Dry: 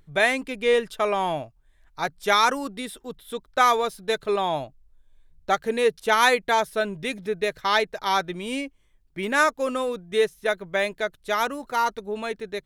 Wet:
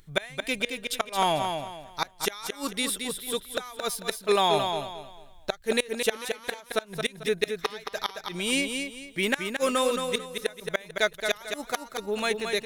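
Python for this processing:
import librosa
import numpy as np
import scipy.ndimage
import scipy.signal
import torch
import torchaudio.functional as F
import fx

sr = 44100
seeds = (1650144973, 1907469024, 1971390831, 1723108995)

y = fx.high_shelf(x, sr, hz=2200.0, db=11.5)
y = fx.gate_flip(y, sr, shuts_db=-11.0, range_db=-27)
y = fx.echo_feedback(y, sr, ms=222, feedback_pct=30, wet_db=-6)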